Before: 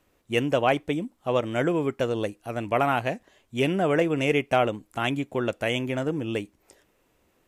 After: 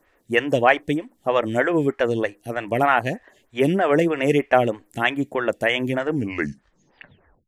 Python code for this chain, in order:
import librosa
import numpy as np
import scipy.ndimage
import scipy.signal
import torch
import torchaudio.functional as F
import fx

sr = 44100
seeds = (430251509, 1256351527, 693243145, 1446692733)

y = fx.tape_stop_end(x, sr, length_s=1.39)
y = fx.peak_eq(y, sr, hz=1800.0, db=9.5, octaves=0.34)
y = fx.stagger_phaser(y, sr, hz=3.2)
y = F.gain(torch.from_numpy(y), 6.5).numpy()